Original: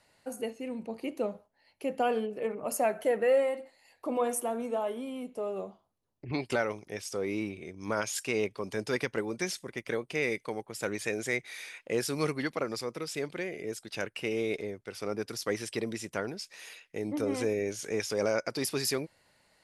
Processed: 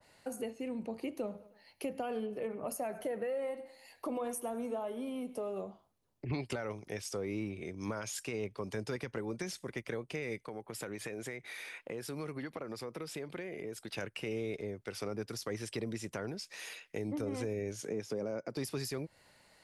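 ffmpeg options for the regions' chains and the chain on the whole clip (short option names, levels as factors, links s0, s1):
-filter_complex "[0:a]asettb=1/sr,asplit=3[s0][s1][s2];[s0]atrim=end=1.134[s3];[s1]atrim=start=1.13:end=5.62,asetpts=PTS-STARTPTS,afade=t=in:d=0.004:c=qsin,afade=t=out:st=4.486:d=0.004:c=qsin,highshelf=f=5200:g=5,bandreject=f=7500:w=5.8,aecho=1:1:103|206|309:0.0841|0.0303|0.0109,atrim=end_sample=198009[s4];[s2]atrim=start=5.616[s5];[s3][s4]acrossfade=d=0.004:c1=hsin:c2=qsin[s6];[s6][s5]acrossfade=d=0.004:c1=qsin:c2=hsin,asettb=1/sr,asplit=3[s7][s8][s9];[s7]atrim=end=10.474[s10];[s8]atrim=start=10.47:end=13.98,asetpts=PTS-STARTPTS,afade=t=in:d=0.004:c=qsin,afade=t=out:st=3.506:d=0.004:c=qsin,equalizer=f=6300:t=o:w=1.2:g=-6,acompressor=threshold=0.01:ratio=3:attack=3.2:release=140:knee=1:detection=peak[s11];[s9]atrim=start=13.976[s12];[s10][s11]acrossfade=d=0.004:c1=hsin:c2=qsin[s13];[s13][s12]acrossfade=d=0.004:c1=qsin:c2=hsin,asettb=1/sr,asplit=3[s14][s15][s16];[s14]atrim=end=17.824[s17];[s15]atrim=start=17.82:end=18.57,asetpts=PTS-STARTPTS,afade=t=in:d=0.004:c=qsin,afade=t=out:st=0.746:d=0.004:c=qsin,highpass=190,tiltshelf=f=660:g=7[s18];[s16]atrim=start=18.566[s19];[s17][s18]acrossfade=d=0.004:c1=hsin:c2=qsin[s20];[s20][s19]acrossfade=d=0.004:c1=qsin:c2=hsin,alimiter=limit=0.0841:level=0:latency=1,acrossover=split=150[s21][s22];[s22]acompressor=threshold=0.00891:ratio=3[s23];[s21][s23]amix=inputs=2:normalize=0,adynamicequalizer=threshold=0.00224:dfrequency=1600:dqfactor=0.7:tfrequency=1600:tqfactor=0.7:attack=5:release=100:ratio=0.375:range=2:mode=cutabove:tftype=highshelf,volume=1.41"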